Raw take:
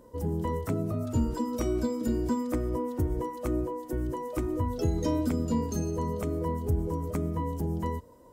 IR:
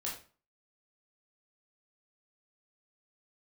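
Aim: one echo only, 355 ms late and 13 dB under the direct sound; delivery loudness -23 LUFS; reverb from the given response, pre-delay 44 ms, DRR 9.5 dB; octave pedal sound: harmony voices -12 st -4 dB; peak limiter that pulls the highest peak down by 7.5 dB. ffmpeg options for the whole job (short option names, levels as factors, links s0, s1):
-filter_complex "[0:a]alimiter=limit=0.0631:level=0:latency=1,aecho=1:1:355:0.224,asplit=2[s0][s1];[1:a]atrim=start_sample=2205,adelay=44[s2];[s1][s2]afir=irnorm=-1:irlink=0,volume=0.282[s3];[s0][s3]amix=inputs=2:normalize=0,asplit=2[s4][s5];[s5]asetrate=22050,aresample=44100,atempo=2,volume=0.631[s6];[s4][s6]amix=inputs=2:normalize=0,volume=2.82"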